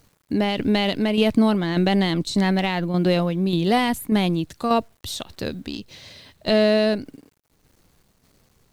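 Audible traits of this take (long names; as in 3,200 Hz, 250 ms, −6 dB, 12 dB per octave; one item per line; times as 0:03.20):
a quantiser's noise floor 10 bits, dither none
tremolo saw down 1.7 Hz, depth 50%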